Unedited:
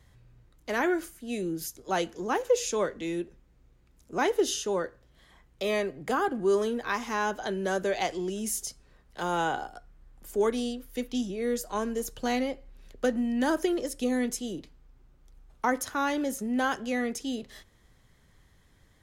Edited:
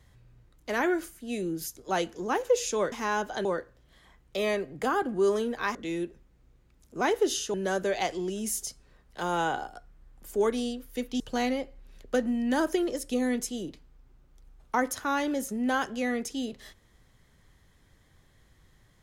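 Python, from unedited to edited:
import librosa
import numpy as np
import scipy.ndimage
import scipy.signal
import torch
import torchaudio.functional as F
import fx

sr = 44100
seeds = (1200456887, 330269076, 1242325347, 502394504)

y = fx.edit(x, sr, fx.swap(start_s=2.92, length_s=1.79, other_s=7.01, other_length_s=0.53),
    fx.cut(start_s=11.2, length_s=0.9), tone=tone)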